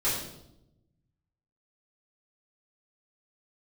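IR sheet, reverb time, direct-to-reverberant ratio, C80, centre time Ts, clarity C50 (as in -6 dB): 0.85 s, -12.0 dB, 5.5 dB, 52 ms, 2.5 dB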